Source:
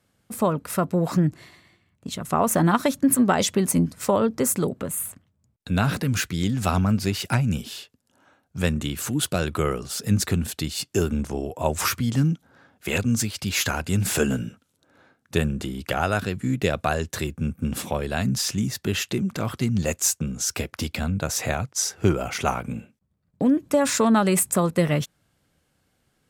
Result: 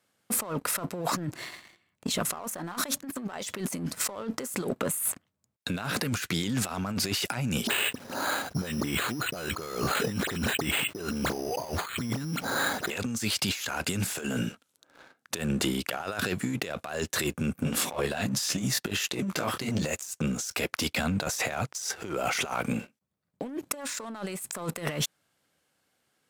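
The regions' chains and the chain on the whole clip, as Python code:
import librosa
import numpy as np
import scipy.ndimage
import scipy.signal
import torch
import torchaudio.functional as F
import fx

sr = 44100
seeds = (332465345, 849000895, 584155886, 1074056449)

y = fx.chain(x, sr, fx.dispersion(late='highs', ms=57.0, hz=2200.0),
    fx.resample_bad(factor=8, down='filtered', up='hold'),
    fx.env_flatten(amount_pct=50), at=(7.67, 12.9))
y = fx.chain(y, sr, fx.transient(attack_db=11, sustain_db=0),
    fx.detune_double(cents=26), at=(17.63, 20.03))
y = fx.highpass(y, sr, hz=490.0, slope=6)
y = fx.over_compress(y, sr, threshold_db=-35.0, ratio=-1.0)
y = fx.leveller(y, sr, passes=2)
y = y * 10.0 ** (-4.0 / 20.0)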